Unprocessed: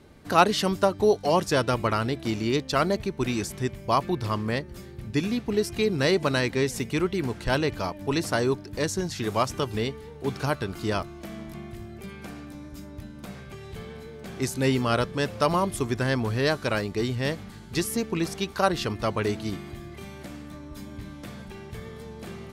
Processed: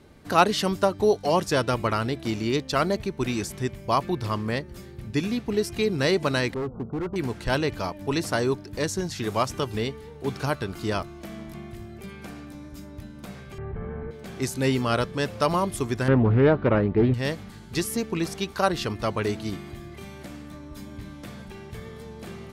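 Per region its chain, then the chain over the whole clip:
6.54–7.16 s: brick-wall FIR low-pass 1.5 kHz + overload inside the chain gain 26 dB
13.58–14.11 s: low-pass 1.7 kHz 24 dB/octave + bass shelf 68 Hz +10.5 dB + level flattener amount 70%
16.08–17.14 s: low-pass 3.3 kHz 24 dB/octave + tilt shelf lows +8 dB, about 1.5 kHz + loudspeaker Doppler distortion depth 0.28 ms
whole clip: none

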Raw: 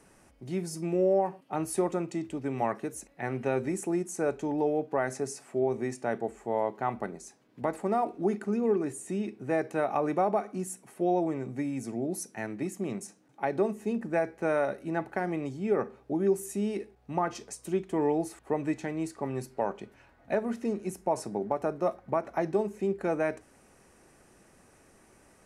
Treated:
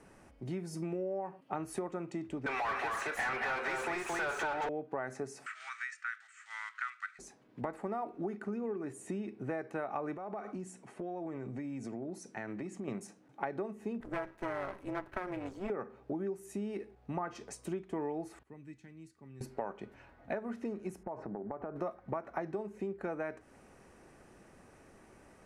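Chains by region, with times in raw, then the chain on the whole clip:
2.46–4.69 s: high-pass 1 kHz + overdrive pedal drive 34 dB, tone 2.5 kHz, clips at -21.5 dBFS + delay 224 ms -3 dB
5.46–7.19 s: block-companded coder 7-bit + Chebyshev band-pass 1.3–8.8 kHz, order 5 + three bands compressed up and down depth 100%
10.15–12.88 s: compression, threshold -38 dBFS + low-pass 9.1 kHz 24 dB/octave
14.00–15.70 s: comb filter that takes the minimum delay 3.1 ms + treble shelf 9.7 kHz +8.5 dB + AM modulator 190 Hz, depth 55%
18.43–19.41 s: high-pass 76 Hz + amplifier tone stack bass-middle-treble 6-0-2
21.03–21.76 s: low-pass 1.5 kHz + compression, threshold -38 dBFS
whole clip: treble shelf 4.7 kHz -10.5 dB; compression 6:1, threshold -37 dBFS; dynamic bell 1.4 kHz, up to +5 dB, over -56 dBFS, Q 1.2; trim +1.5 dB

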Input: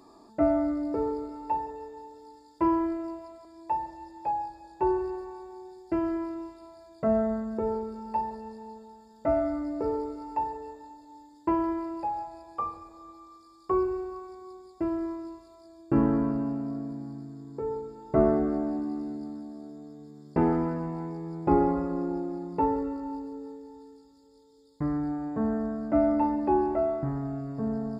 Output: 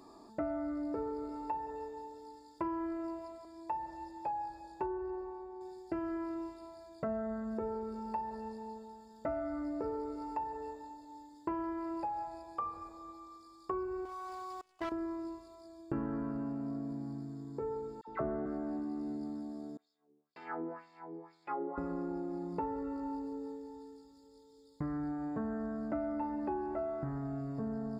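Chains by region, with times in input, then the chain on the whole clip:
4.86–5.61 s: low-pass 1 kHz 6 dB/octave + peaking EQ 140 Hz -7.5 dB 1.1 oct
14.05–14.92 s: resonant low shelf 560 Hz -8.5 dB, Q 1.5 + level held to a coarse grid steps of 18 dB + waveshaping leveller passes 3
18.01–18.46 s: low-pass 3.8 kHz + phase dispersion lows, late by 67 ms, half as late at 1.1 kHz
19.77–21.78 s: expander -39 dBFS + tilt shelf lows -4 dB, about 910 Hz + LFO band-pass sine 2 Hz 360–4300 Hz
whole clip: dynamic bell 1.5 kHz, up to +6 dB, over -51 dBFS, Q 2.4; compression 4:1, threshold -34 dBFS; trim -1.5 dB

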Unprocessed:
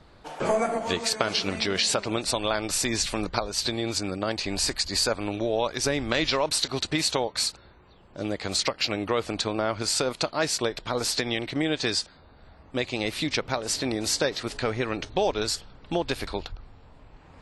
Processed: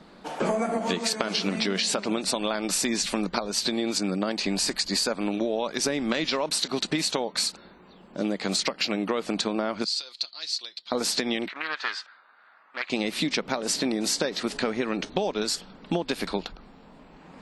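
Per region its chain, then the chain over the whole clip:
9.84–10.92 s: band-pass filter 4.3 kHz, Q 4.6 + comb 5.8 ms, depth 43%
11.48–12.90 s: resonant high-pass 1.4 kHz, resonance Q 2.4 + tape spacing loss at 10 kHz 28 dB + loudspeaker Doppler distortion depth 0.18 ms
whole clip: resonant low shelf 140 Hz -10.5 dB, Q 3; compression, threshold -26 dBFS; trim +3.5 dB

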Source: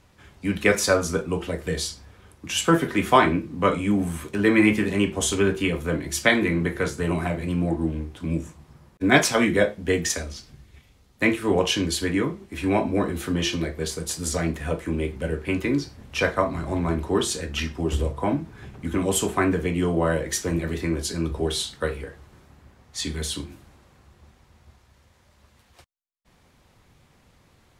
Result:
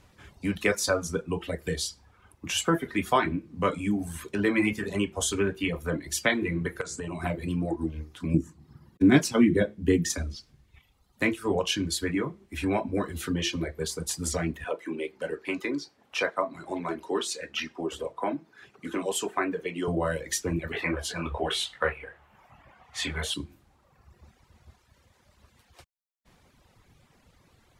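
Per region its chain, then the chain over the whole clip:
6.81–7.24 s: resonant low-pass 7.7 kHz, resonance Q 2.4 + compression 16:1, threshold -27 dBFS
8.34–10.35 s: high-pass 74 Hz + resonant low shelf 430 Hz +9.5 dB, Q 1.5
14.64–19.88 s: high-pass 330 Hz + treble shelf 8.6 kHz -9 dB
20.72–23.34 s: high-order bell 1.3 kHz +12.5 dB 2.9 oct + detune thickener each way 38 cents
whole clip: reverb removal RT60 1.2 s; compression 1.5:1, threshold -30 dBFS

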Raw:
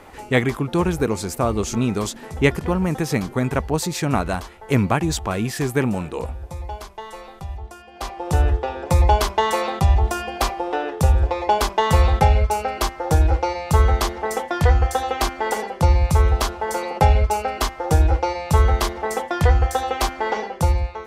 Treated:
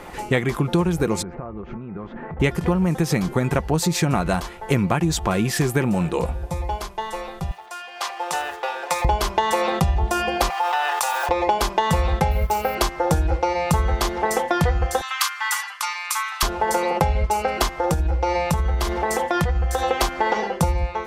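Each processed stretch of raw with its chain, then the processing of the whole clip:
1.22–2.40 s: low-pass 1.9 kHz 24 dB/octave + compression 20:1, threshold -34 dBFS
7.51–9.05 s: companding laws mixed up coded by mu + high-pass 940 Hz + treble shelf 12 kHz -8 dB
10.50–11.29 s: companding laws mixed up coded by mu + Chebyshev high-pass 890 Hz, order 3 + level flattener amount 70%
12.31–12.75 s: companding laws mixed up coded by A + low-pass 9.3 kHz + careless resampling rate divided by 3×, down none, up hold
15.01–16.43 s: elliptic high-pass 1.1 kHz, stop band 70 dB + treble shelf 7.5 kHz +5 dB
17.76–19.84 s: peaking EQ 62 Hz +9 dB 0.35 oct + compression 4:1, threshold -22 dBFS
whole clip: peaking EQ 170 Hz +4 dB 0.2 oct; comb 5.7 ms, depth 30%; compression, threshold -22 dBFS; trim +5.5 dB

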